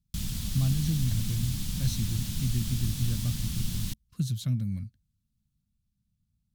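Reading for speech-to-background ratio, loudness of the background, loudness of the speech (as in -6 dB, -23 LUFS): 2.5 dB, -34.0 LUFS, -31.5 LUFS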